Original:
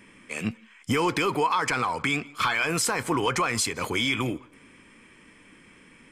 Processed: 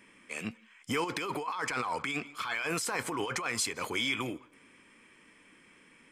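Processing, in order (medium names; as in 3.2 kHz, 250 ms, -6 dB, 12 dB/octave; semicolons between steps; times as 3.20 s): bass shelf 180 Hz -10 dB; 1.04–3.46 s: compressor with a negative ratio -29 dBFS, ratio -1; trim -5 dB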